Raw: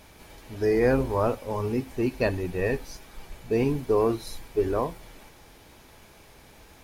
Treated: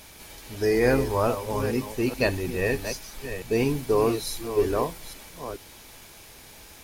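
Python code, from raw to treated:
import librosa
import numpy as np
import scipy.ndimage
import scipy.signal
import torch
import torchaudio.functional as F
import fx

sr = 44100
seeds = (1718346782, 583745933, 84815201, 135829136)

y = fx.reverse_delay(x, sr, ms=428, wet_db=-9.5)
y = fx.high_shelf(y, sr, hz=2600.0, db=10.5)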